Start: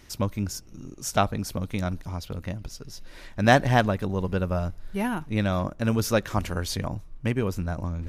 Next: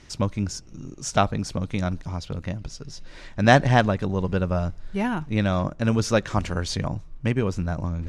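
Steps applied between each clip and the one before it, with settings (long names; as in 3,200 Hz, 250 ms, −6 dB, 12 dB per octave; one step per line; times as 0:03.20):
low-pass filter 8,200 Hz 24 dB per octave
parametric band 150 Hz +5 dB 0.28 octaves
level +2 dB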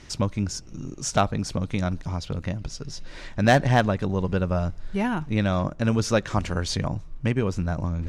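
in parallel at −1 dB: downward compressor, threshold −30 dBFS, peak gain reduction 19 dB
on the sum: hard clipping −6 dBFS, distortion −23 dB
level −2.5 dB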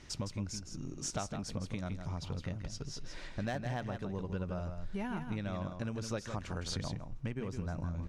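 downward compressor 6 to 1, threshold −27 dBFS, peak gain reduction 13.5 dB
single-tap delay 162 ms −7.5 dB
level −7.5 dB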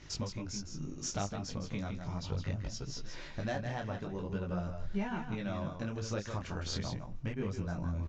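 downsampling to 16,000 Hz
micro pitch shift up and down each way 14 cents
level +5 dB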